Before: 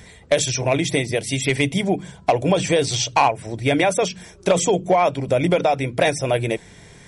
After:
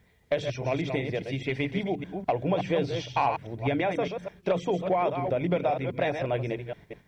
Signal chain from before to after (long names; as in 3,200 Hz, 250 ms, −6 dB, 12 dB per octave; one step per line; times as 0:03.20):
delay that plays each chunk backwards 204 ms, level −6.5 dB
noise gate −37 dBFS, range −9 dB
high-frequency loss of the air 290 metres
bit reduction 11 bits
level −8 dB